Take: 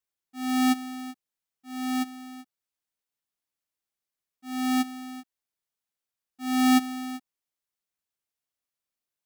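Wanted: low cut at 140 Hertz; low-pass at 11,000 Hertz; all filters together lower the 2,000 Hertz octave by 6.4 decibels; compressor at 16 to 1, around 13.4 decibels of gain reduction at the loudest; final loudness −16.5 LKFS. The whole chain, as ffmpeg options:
ffmpeg -i in.wav -af "highpass=140,lowpass=11000,equalizer=frequency=2000:width_type=o:gain=-7.5,acompressor=threshold=-30dB:ratio=16,volume=21dB" out.wav

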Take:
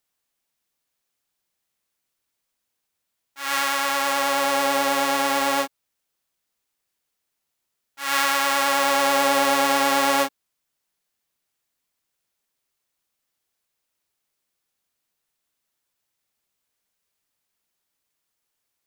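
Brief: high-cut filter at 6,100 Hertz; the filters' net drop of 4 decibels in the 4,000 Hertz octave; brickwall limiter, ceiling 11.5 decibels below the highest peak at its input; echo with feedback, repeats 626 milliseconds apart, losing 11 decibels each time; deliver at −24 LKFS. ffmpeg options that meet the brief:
ffmpeg -i in.wav -af "lowpass=6100,equalizer=frequency=4000:width_type=o:gain=-4.5,alimiter=limit=-19.5dB:level=0:latency=1,aecho=1:1:626|1252|1878:0.282|0.0789|0.0221,volume=7dB" out.wav

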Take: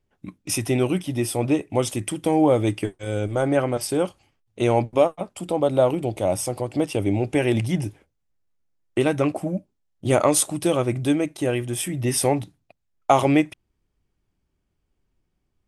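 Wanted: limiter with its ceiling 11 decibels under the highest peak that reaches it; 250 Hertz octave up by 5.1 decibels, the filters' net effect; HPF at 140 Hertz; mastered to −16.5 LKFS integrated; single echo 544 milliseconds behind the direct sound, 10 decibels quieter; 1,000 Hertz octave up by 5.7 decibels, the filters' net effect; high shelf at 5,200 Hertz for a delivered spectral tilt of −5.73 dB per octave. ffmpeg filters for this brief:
ffmpeg -i in.wav -af "highpass=140,equalizer=frequency=250:width_type=o:gain=6.5,equalizer=frequency=1000:width_type=o:gain=7.5,highshelf=frequency=5200:gain=-4,alimiter=limit=-9.5dB:level=0:latency=1,aecho=1:1:544:0.316,volume=5.5dB" out.wav

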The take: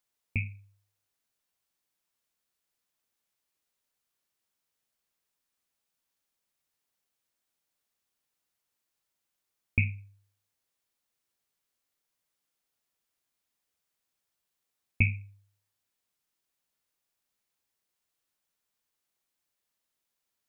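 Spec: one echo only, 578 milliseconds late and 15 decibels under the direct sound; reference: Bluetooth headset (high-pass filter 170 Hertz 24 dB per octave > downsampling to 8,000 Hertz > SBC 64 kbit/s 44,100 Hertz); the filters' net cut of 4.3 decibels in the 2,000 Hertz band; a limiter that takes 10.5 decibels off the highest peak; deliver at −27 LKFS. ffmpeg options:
ffmpeg -i in.wav -af "equalizer=frequency=2000:width_type=o:gain=-5.5,alimiter=limit=-23.5dB:level=0:latency=1,highpass=frequency=170:width=0.5412,highpass=frequency=170:width=1.3066,aecho=1:1:578:0.178,aresample=8000,aresample=44100,volume=17.5dB" -ar 44100 -c:a sbc -b:a 64k out.sbc

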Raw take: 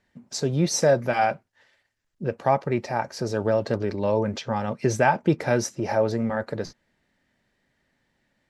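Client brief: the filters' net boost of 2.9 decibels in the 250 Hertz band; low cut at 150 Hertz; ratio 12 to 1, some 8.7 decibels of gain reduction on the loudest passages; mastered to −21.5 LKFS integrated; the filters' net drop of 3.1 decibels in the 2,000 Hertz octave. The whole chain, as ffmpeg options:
ffmpeg -i in.wav -af "highpass=150,equalizer=frequency=250:width_type=o:gain=5,equalizer=frequency=2000:width_type=o:gain=-4.5,acompressor=threshold=-22dB:ratio=12,volume=7.5dB" out.wav

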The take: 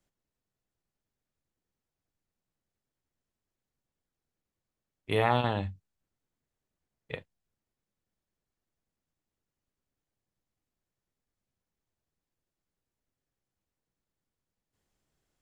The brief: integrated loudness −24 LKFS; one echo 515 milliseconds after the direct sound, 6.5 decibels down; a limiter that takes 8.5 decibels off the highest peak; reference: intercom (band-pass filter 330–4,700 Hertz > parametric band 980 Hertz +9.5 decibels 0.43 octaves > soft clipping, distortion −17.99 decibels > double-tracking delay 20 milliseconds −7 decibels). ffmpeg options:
ffmpeg -i in.wav -filter_complex "[0:a]alimiter=limit=-19dB:level=0:latency=1,highpass=330,lowpass=4700,equalizer=frequency=980:width_type=o:width=0.43:gain=9.5,aecho=1:1:515:0.473,asoftclip=threshold=-21dB,asplit=2[link_01][link_02];[link_02]adelay=20,volume=-7dB[link_03];[link_01][link_03]amix=inputs=2:normalize=0,volume=11.5dB" out.wav

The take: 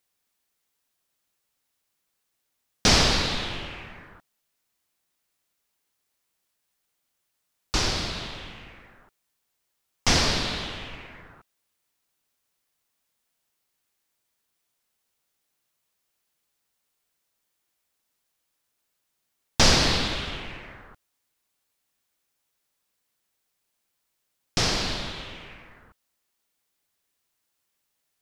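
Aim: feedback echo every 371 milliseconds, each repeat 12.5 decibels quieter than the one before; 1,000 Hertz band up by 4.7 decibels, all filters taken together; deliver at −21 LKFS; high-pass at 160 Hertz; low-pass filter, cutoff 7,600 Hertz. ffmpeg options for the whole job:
ffmpeg -i in.wav -af "highpass=160,lowpass=7600,equalizer=frequency=1000:width_type=o:gain=6,aecho=1:1:371|742|1113:0.237|0.0569|0.0137,volume=3dB" out.wav

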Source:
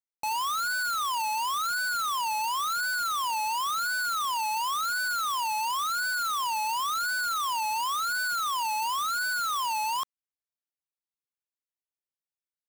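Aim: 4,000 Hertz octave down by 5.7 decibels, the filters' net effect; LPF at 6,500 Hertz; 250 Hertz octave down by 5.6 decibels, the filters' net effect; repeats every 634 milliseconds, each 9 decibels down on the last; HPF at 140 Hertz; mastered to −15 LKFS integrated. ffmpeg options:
ffmpeg -i in.wav -af "highpass=140,lowpass=6500,equalizer=frequency=250:width_type=o:gain=-7,equalizer=frequency=4000:width_type=o:gain=-6.5,aecho=1:1:634|1268|1902|2536:0.355|0.124|0.0435|0.0152,volume=14dB" out.wav

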